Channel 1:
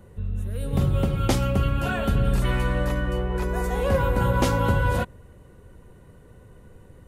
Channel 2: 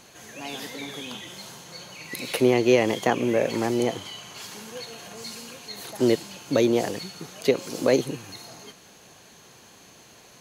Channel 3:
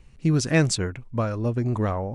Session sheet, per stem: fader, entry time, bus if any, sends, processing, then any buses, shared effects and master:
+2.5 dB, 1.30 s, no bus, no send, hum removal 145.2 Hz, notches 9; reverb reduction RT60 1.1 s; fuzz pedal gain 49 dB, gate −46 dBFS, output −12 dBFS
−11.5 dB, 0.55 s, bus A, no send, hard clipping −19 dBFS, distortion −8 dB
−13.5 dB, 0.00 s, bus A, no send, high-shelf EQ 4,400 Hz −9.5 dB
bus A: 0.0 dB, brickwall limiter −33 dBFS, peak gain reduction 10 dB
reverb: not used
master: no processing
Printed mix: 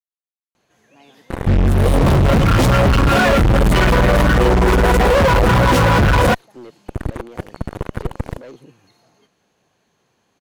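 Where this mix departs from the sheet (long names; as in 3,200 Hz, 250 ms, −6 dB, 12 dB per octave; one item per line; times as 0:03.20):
stem 3: muted
master: extra high-shelf EQ 3,600 Hz −10.5 dB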